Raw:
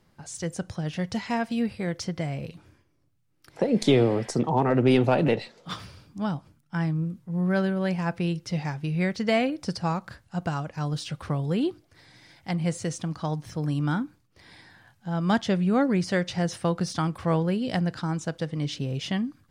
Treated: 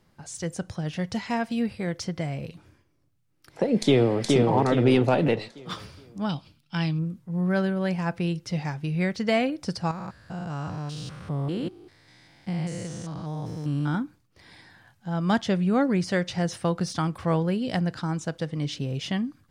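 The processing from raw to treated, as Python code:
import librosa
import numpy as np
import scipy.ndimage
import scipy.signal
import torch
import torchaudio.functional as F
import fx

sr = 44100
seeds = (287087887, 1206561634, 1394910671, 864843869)

y = fx.echo_throw(x, sr, start_s=3.78, length_s=0.44, ms=420, feedback_pct=40, wet_db=-2.0)
y = fx.band_shelf(y, sr, hz=3500.0, db=14.0, octaves=1.3, at=(6.29, 6.99))
y = fx.spec_steps(y, sr, hold_ms=200, at=(9.91, 13.95))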